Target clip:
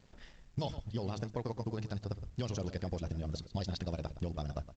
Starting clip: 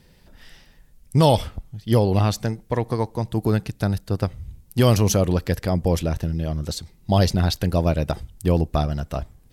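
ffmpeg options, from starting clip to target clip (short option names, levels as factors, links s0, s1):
-filter_complex "[0:a]acrossover=split=4300[s0][s1];[s1]acompressor=threshold=0.0112:ratio=4:attack=1:release=60[s2];[s0][s2]amix=inputs=2:normalize=0,highshelf=f=3300:g=-7.5,bandreject=f=53.02:t=h:w=4,bandreject=f=106.04:t=h:w=4,bandreject=f=159.06:t=h:w=4,bandreject=f=212.08:t=h:w=4,bandreject=f=265.1:t=h:w=4,bandreject=f=318.12:t=h:w=4,acrossover=split=4300[s3][s4];[s3]acompressor=threshold=0.0251:ratio=6[s5];[s5][s4]amix=inputs=2:normalize=0,atempo=2,aeval=exprs='sgn(val(0))*max(abs(val(0))-0.00133,0)':c=same,asplit=2[s6][s7];[s7]adelay=116.6,volume=0.2,highshelf=f=4000:g=-2.62[s8];[s6][s8]amix=inputs=2:normalize=0,volume=0.794" -ar 16000 -c:a pcm_alaw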